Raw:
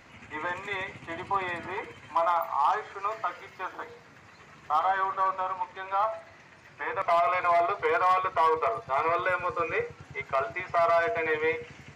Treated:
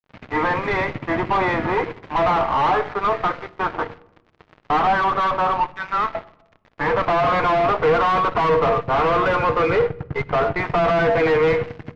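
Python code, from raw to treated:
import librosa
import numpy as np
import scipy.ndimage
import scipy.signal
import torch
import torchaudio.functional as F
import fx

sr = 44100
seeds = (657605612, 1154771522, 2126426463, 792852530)

y = fx.tracing_dist(x, sr, depth_ms=0.082)
y = fx.highpass(y, sr, hz=1300.0, slope=24, at=(5.72, 6.15))
y = fx.high_shelf(y, sr, hz=2800.0, db=-9.5, at=(9.75, 10.59))
y = fx.fuzz(y, sr, gain_db=35.0, gate_db=-45.0)
y = fx.spacing_loss(y, sr, db_at_10k=40)
y = fx.room_shoebox(y, sr, seeds[0], volume_m3=3700.0, walls='furnished', distance_m=0.47)
y = y * librosa.db_to_amplitude(1.0)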